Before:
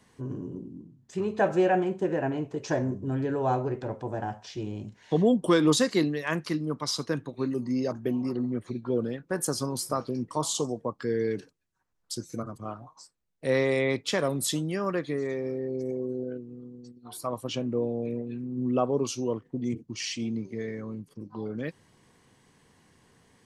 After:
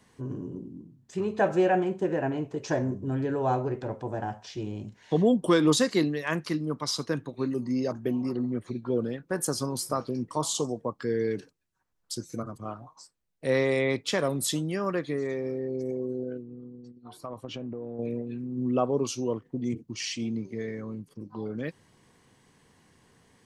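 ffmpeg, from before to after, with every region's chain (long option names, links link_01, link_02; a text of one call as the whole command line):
ffmpeg -i in.wav -filter_complex "[0:a]asettb=1/sr,asplit=3[link_01][link_02][link_03];[link_01]atrim=end=16.424[link_04];[link_02]atrim=start=16.42:end=17.99,asetpts=PTS-STARTPTS,afade=type=in:duration=0.004:curve=qsin,afade=type=out:start_time=1.566:duration=0.004:curve=qsin,aemphasis=mode=reproduction:type=75kf,acompressor=threshold=-32dB:ratio=10:attack=3.2:release=140:knee=1:detection=peak[link_05];[link_03]atrim=start=17.986[link_06];[link_04][link_05]acrossfade=duration=0.004:curve1=hsin:curve2=qsin[link_07];[link_07][link_06]acrossfade=duration=0.004:curve1=qsin:curve2=hsin" out.wav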